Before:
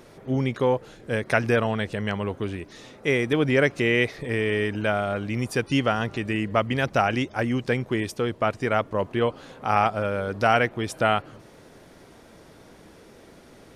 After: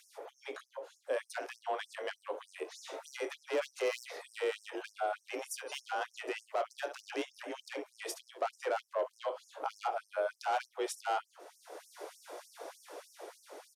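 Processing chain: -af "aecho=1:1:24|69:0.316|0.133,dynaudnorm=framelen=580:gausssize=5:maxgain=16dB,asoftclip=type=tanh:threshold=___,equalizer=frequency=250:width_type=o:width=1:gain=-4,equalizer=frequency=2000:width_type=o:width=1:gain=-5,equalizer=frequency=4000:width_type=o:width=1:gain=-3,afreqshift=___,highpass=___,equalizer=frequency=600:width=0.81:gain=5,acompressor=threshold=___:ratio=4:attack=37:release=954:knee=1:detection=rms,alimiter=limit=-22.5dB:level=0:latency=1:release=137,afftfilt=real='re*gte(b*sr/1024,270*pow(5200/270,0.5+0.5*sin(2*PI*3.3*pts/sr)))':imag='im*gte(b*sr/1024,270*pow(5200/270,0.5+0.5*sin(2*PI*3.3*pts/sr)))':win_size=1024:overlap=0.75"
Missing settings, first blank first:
-15.5dB, 38, 51, -27dB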